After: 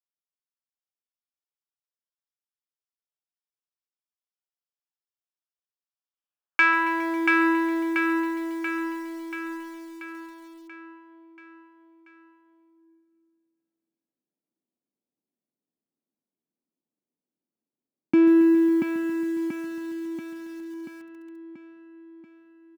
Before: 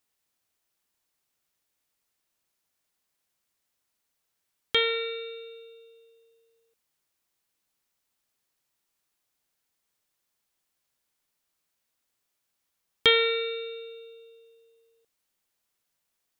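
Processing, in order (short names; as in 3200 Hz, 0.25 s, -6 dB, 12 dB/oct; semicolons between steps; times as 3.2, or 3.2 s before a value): Wiener smoothing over 15 samples; HPF 160 Hz 24 dB/oct; high shelf 4900 Hz -9.5 dB; in parallel at +3 dB: compressor 6:1, threshold -36 dBFS, peak gain reduction 18.5 dB; on the sum: sample leveller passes 3; varispeed -28%; band-pass sweep 5600 Hz -> 260 Hz, 5.91–7.59; feedback echo 0.684 s, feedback 56%, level -3 dB; on a send at -21 dB: reverb RT60 3.4 s, pre-delay 0.136 s; on the sum: lo-fi delay 0.137 s, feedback 80%, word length 7-bit, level -15 dB; gain +2 dB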